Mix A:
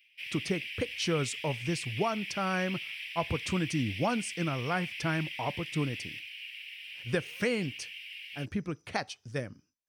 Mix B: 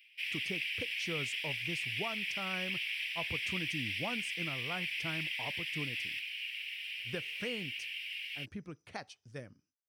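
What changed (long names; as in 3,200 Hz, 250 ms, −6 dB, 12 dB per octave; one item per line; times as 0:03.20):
speech −10.5 dB
background +3.0 dB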